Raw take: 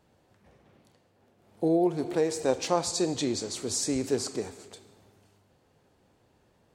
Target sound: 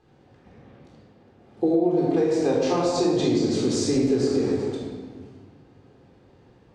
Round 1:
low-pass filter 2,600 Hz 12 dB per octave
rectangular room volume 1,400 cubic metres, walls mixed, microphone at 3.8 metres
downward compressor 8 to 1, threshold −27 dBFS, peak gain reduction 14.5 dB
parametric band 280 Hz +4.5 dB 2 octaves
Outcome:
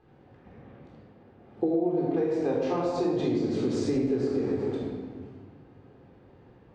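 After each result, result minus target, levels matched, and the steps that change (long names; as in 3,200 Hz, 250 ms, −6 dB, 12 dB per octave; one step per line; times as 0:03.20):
4,000 Hz band −7.0 dB; downward compressor: peak gain reduction +5 dB
change: low-pass filter 5,500 Hz 12 dB per octave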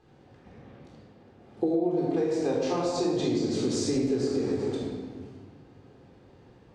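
downward compressor: peak gain reduction +5.5 dB
change: downward compressor 8 to 1, threshold −21 dBFS, peak gain reduction 9.5 dB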